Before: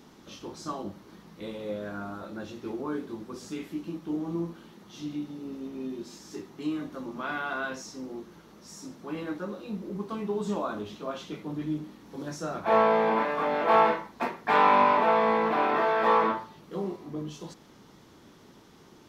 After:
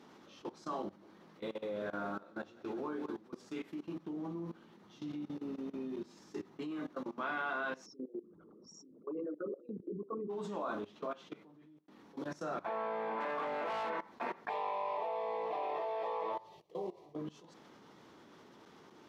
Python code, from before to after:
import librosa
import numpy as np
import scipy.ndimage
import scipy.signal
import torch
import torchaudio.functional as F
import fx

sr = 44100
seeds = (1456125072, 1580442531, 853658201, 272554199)

y = fx.echo_split(x, sr, split_hz=310.0, low_ms=123, high_ms=184, feedback_pct=52, wet_db=-10.5, at=(0.83, 3.18))
y = fx.peak_eq(y, sr, hz=96.0, db=7.0, octaves=2.2, at=(3.95, 6.71))
y = fx.envelope_sharpen(y, sr, power=3.0, at=(7.85, 10.29), fade=0.02)
y = fx.clip_hard(y, sr, threshold_db=-24.0, at=(13.2, 13.9))
y = fx.fixed_phaser(y, sr, hz=600.0, stages=4, at=(14.49, 17.16))
y = fx.edit(y, sr, fx.fade_out_span(start_s=11.04, length_s=0.84), tone=tone)
y = fx.lowpass(y, sr, hz=2500.0, slope=6)
y = fx.level_steps(y, sr, step_db=19)
y = fx.highpass(y, sr, hz=360.0, slope=6)
y = y * librosa.db_to_amplitude(2.0)